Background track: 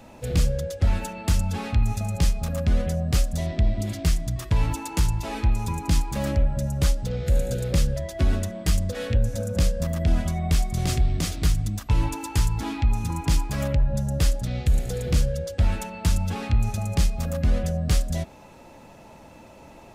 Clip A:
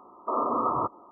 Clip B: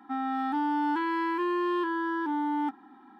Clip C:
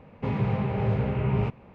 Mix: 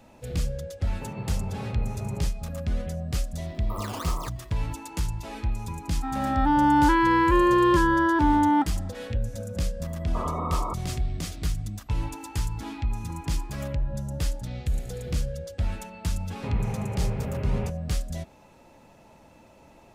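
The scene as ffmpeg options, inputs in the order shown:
-filter_complex "[3:a]asplit=2[a][b];[1:a]asplit=2[c][d];[2:a]asplit=2[e][f];[0:a]volume=-6.5dB[g];[a]lowpass=f=1.2k:p=1[h];[c]acrusher=samples=13:mix=1:aa=0.000001:lfo=1:lforange=20.8:lforate=2.4[i];[e]dynaudnorm=f=190:g=5:m=9dB[j];[f]acompressor=threshold=-39dB:ratio=6:attack=3.2:release=140:knee=1:detection=peak[k];[h]atrim=end=1.74,asetpts=PTS-STARTPTS,volume=-9.5dB,afade=t=in:d=0.004:c=hsin,afade=t=out:st=1.736:d=0.004:c=hsin,adelay=780[l];[i]atrim=end=1.11,asetpts=PTS-STARTPTS,volume=-9.5dB,afade=t=in:d=0.004:c=hsin,afade=t=out:st=1.106:d=0.004:c=hsin,adelay=3420[m];[j]atrim=end=3.19,asetpts=PTS-STARTPTS,volume=-0.5dB,afade=t=in:d=0.004:c=hsin,afade=t=out:st=3.186:d=0.004:c=hsin,adelay=261513S[n];[d]atrim=end=1.11,asetpts=PTS-STARTPTS,volume=-5dB,afade=t=in:d=0.004:c=hsin,afade=t=out:st=1.106:d=0.004:c=hsin,adelay=9870[o];[k]atrim=end=3.19,asetpts=PTS-STARTPTS,volume=-14dB,afade=t=in:d=0.004:c=hsin,afade=t=out:st=3.186:d=0.004:c=hsin,adelay=523026S[p];[b]atrim=end=1.74,asetpts=PTS-STARTPTS,volume=-5.5dB,afade=t=in:d=0.004:c=hsin,afade=t=out:st=1.736:d=0.004:c=hsin,adelay=714420S[q];[g][l][m][n][o][p][q]amix=inputs=7:normalize=0"

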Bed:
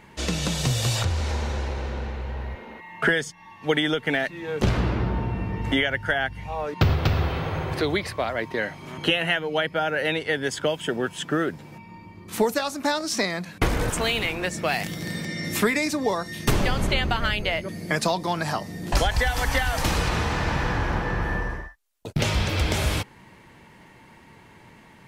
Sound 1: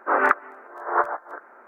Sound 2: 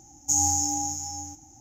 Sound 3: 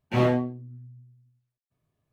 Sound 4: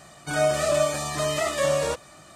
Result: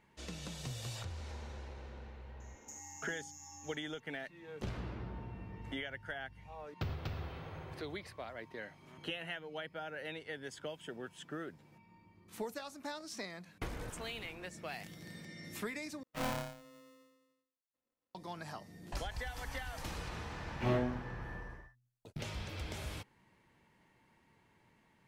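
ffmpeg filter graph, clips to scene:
-filter_complex "[3:a]asplit=2[a][b];[0:a]volume=-19dB[c];[2:a]acompressor=threshold=-35dB:ratio=6:attack=3.2:release=140:knee=1:detection=peak[d];[a]aeval=exprs='val(0)*sgn(sin(2*PI*390*n/s))':c=same[e];[c]asplit=2[f][g];[f]atrim=end=16.034[h];[e]atrim=end=2.12,asetpts=PTS-STARTPTS,volume=-15.5dB[i];[g]atrim=start=18.146[j];[d]atrim=end=1.6,asetpts=PTS-STARTPTS,volume=-13dB,afade=t=in:d=0.004:c=hsin,afade=t=out:st=1.596:d=0.004:c=hsin,adelay=2400[k];[b]atrim=end=2.12,asetpts=PTS-STARTPTS,volume=-10.5dB,afade=t=in:d=0.004:c=hsin,afade=t=out:st=2.116:d=0.004:c=hsin,adelay=20490[l];[h][i]acrossfade=d=0.004:c1=hsin:c2=hsin[m];[m][j]acrossfade=d=0.004:c1=hsin:c2=hsin[n];[n][k][l]amix=inputs=3:normalize=0"

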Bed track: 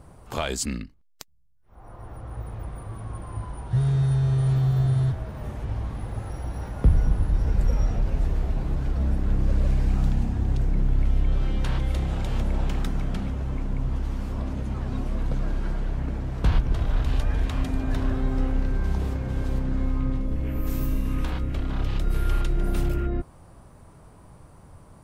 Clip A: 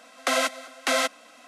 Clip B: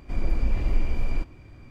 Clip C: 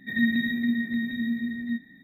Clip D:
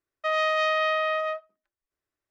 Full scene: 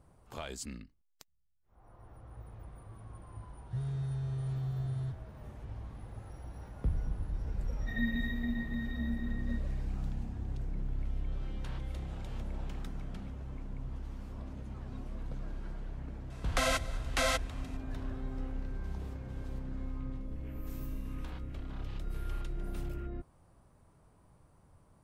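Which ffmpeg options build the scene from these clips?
-filter_complex "[0:a]volume=-14dB[a];[3:a]atrim=end=2.03,asetpts=PTS-STARTPTS,volume=-10.5dB,afade=t=in:d=0.004:c=hsin,afade=t=out:st=2.026:d=0.004:c=hsin,adelay=7800[b];[1:a]atrim=end=1.47,asetpts=PTS-STARTPTS,volume=-7dB,afade=t=in:d=0.004:c=hsin,afade=t=out:st=1.466:d=0.004:c=hsin,adelay=16300[c];[a][b][c]amix=inputs=3:normalize=0"

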